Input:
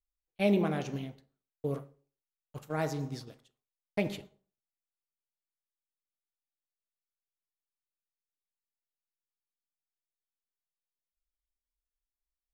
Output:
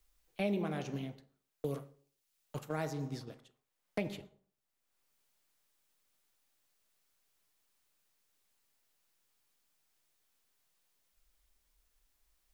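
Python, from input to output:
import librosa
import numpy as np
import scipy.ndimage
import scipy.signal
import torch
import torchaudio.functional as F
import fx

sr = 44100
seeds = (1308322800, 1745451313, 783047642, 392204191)

y = fx.band_squash(x, sr, depth_pct=70)
y = F.gain(torch.from_numpy(y), -3.5).numpy()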